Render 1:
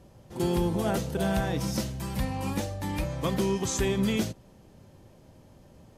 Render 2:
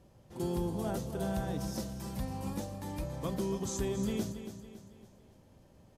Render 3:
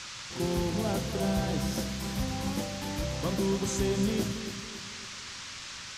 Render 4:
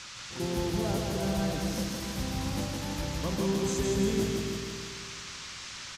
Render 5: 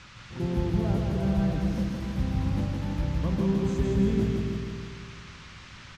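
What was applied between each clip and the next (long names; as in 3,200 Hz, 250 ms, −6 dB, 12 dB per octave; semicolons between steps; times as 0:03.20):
dynamic equaliser 2,300 Hz, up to −8 dB, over −50 dBFS, Q 0.95; on a send: repeating echo 279 ms, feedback 44%, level −10.5 dB; on the sum: level −7 dB
noise in a band 970–6,600 Hz −47 dBFS; on a send at −14 dB: convolution reverb RT60 0.85 s, pre-delay 7 ms; on the sum: level +4.5 dB
repeating echo 164 ms, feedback 56%, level −3 dB; level −2.5 dB
bass and treble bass +10 dB, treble −14 dB; level −2 dB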